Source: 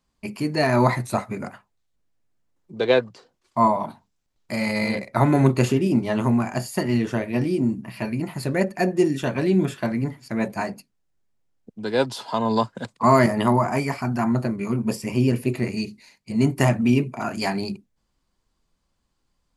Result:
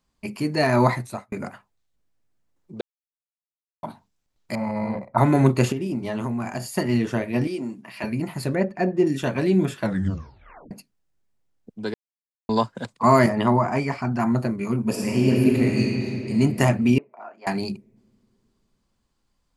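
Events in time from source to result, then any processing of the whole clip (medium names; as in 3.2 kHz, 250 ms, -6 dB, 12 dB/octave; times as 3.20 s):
0.86–1.32 s: fade out
2.81–3.83 s: mute
4.55–5.18 s: FFT filter 170 Hz 0 dB, 410 Hz -7 dB, 970 Hz +7 dB, 1.9 kHz -14 dB, 3.6 kHz -23 dB
5.72–6.74 s: compression 4:1, threshold -24 dBFS
7.47–8.04 s: frequency weighting A
8.55–9.07 s: tape spacing loss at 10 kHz 20 dB
9.81 s: tape stop 0.90 s
11.94–12.49 s: mute
13.29–14.20 s: distance through air 77 m
14.88–16.36 s: reverb throw, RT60 3 s, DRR -2 dB
16.98–17.47 s: ladder band-pass 840 Hz, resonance 25%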